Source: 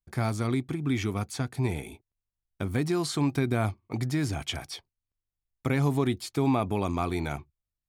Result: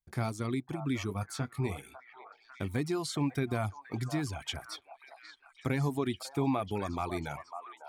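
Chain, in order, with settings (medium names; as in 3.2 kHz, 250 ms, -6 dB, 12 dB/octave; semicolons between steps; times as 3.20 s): 1.07–1.90 s: doubling 21 ms -9 dB; repeats whose band climbs or falls 549 ms, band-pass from 870 Hz, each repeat 0.7 oct, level -5 dB; reverb removal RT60 0.84 s; trim -4 dB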